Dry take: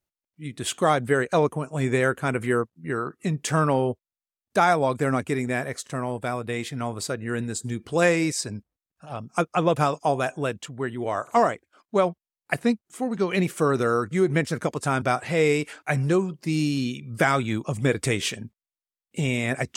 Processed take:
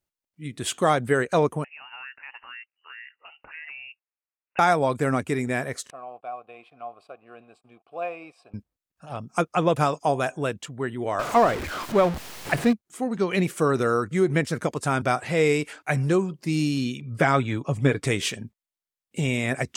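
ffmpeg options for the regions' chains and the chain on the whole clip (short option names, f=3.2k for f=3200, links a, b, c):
-filter_complex "[0:a]asettb=1/sr,asplit=3[a][b][c];[a]atrim=end=1.644[d];[b]atrim=start=1.64:end=4.59,asetpts=PTS-STARTPTS,afade=t=in:d=0.004:c=qsin,afade=t=out:st=2.946:d=0.004:c=qsin,highpass=f=490:w=0.5412,highpass=f=490:w=1.3066,acompressor=threshold=-44dB:ratio=2.5:attack=3.2:release=140:knee=1:detection=peak,lowpass=f=2.7k:t=q:w=0.5098,lowpass=f=2.7k:t=q:w=0.6013,lowpass=f=2.7k:t=q:w=0.9,lowpass=f=2.7k:t=q:w=2.563,afreqshift=-3200[e];[c]atrim=start=4.586[f];[d][e]acrossfade=d=0.004:c1=hsin:c2=qsin[g];[g][f]acrossfade=d=0.004:c1=qsin:c2=hsin,asettb=1/sr,asplit=3[h][i][j];[h]atrim=end=5.904[k];[i]atrim=start=5.9:end=8.54,asetpts=PTS-STARTPTS,afade=t=in:d=0.004:c=qsin,afade=t=out:st=2.636:d=0.004:c=qsin,aeval=exprs='sgn(val(0))*max(abs(val(0))-0.00422,0)':c=same,asplit=3[l][m][n];[l]bandpass=f=730:t=q:w=8,volume=0dB[o];[m]bandpass=f=1.09k:t=q:w=8,volume=-6dB[p];[n]bandpass=f=2.44k:t=q:w=8,volume=-9dB[q];[o][p][q]amix=inputs=3:normalize=0,equalizer=f=6.6k:t=o:w=0.48:g=-14.5[r];[j]atrim=start=8.536[s];[k][r]acrossfade=d=0.004:c1=hsin:c2=qsin[t];[t][s]acrossfade=d=0.004:c1=qsin:c2=hsin,asettb=1/sr,asplit=3[u][v][w];[u]atrim=end=11.194[x];[v]atrim=start=11.19:end=12.73,asetpts=PTS-STARTPTS,afade=t=in:d=0.004:c=qsin,afade=t=out:st=1.536:d=0.004:c=qsin,aeval=exprs='val(0)+0.5*0.0596*sgn(val(0))':c=same,highshelf=f=6.2k:g=-11.5[y];[w]atrim=start=12.726[z];[x][y]acrossfade=d=0.004:c1=hsin:c2=qsin[aa];[aa][z]acrossfade=d=0.004:c1=qsin:c2=hsin,asettb=1/sr,asplit=3[ab][ac][ad];[ab]atrim=end=17.004[ae];[ac]atrim=start=17:end=18.07,asetpts=PTS-STARTPTS,afade=t=in:d=0.004:c=qsin,afade=t=out:st=1.066:d=0.004:c=qsin,highshelf=f=5.9k:g=-11,acompressor=mode=upward:threshold=-43dB:ratio=2.5:attack=3.2:release=140:knee=2.83:detection=peak,aecho=1:1:7.1:0.43,atrim=end_sample=47187[af];[ad]atrim=start=18.066[ag];[ae][af]acrossfade=d=0.004:c1=hsin:c2=qsin[ah];[ah][ag]acrossfade=d=0.004:c1=qsin:c2=hsin"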